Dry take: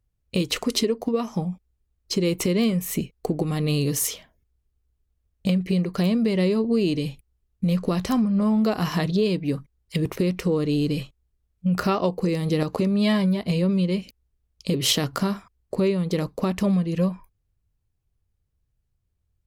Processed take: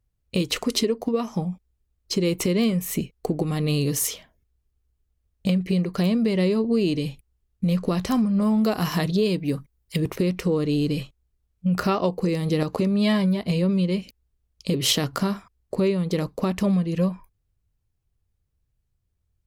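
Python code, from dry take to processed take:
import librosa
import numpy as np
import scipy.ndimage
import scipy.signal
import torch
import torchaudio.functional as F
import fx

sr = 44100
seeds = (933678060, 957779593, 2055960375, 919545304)

y = fx.high_shelf(x, sr, hz=fx.line((8.13, 7600.0), (9.99, 11000.0)), db=9.5, at=(8.13, 9.99), fade=0.02)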